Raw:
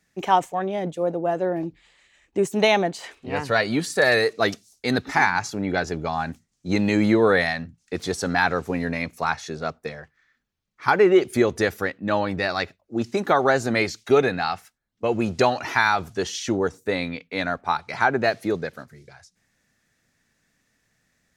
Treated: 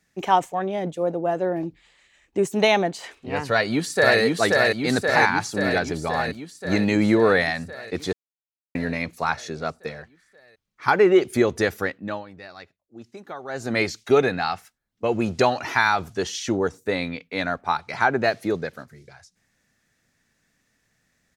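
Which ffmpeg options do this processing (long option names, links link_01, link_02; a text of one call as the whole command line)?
ffmpeg -i in.wav -filter_complex "[0:a]asplit=2[link_01][link_02];[link_02]afade=type=in:start_time=3.49:duration=0.01,afade=type=out:start_time=4.19:duration=0.01,aecho=0:1:530|1060|1590|2120|2650|3180|3710|4240|4770|5300|5830|6360:0.841395|0.588977|0.412284|0.288599|0.202019|0.141413|0.0989893|0.0692925|0.0485048|0.0339533|0.0237673|0.0166371[link_03];[link_01][link_03]amix=inputs=2:normalize=0,asplit=5[link_04][link_05][link_06][link_07][link_08];[link_04]atrim=end=8.13,asetpts=PTS-STARTPTS,afade=type=out:start_time=8.126:duration=0.004:curve=hsin[link_09];[link_05]atrim=start=8.13:end=8.75,asetpts=PTS-STARTPTS,volume=0[link_10];[link_06]atrim=start=8.75:end=12.24,asetpts=PTS-STARTPTS,afade=type=in:duration=0.004:curve=hsin,afade=type=out:start_time=3.16:duration=0.33:silence=0.141254[link_11];[link_07]atrim=start=12.24:end=13.48,asetpts=PTS-STARTPTS,volume=-17dB[link_12];[link_08]atrim=start=13.48,asetpts=PTS-STARTPTS,afade=type=in:duration=0.33:silence=0.141254[link_13];[link_09][link_10][link_11][link_12][link_13]concat=n=5:v=0:a=1" out.wav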